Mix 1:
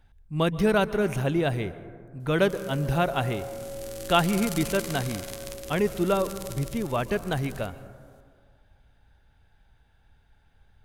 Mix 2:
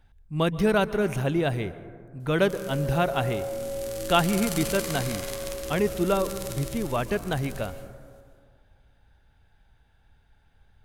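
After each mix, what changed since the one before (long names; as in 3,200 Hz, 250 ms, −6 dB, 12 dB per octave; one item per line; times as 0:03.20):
background: send +10.0 dB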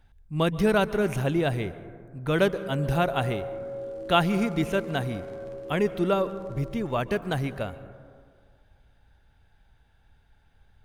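background: add resonant band-pass 420 Hz, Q 1.7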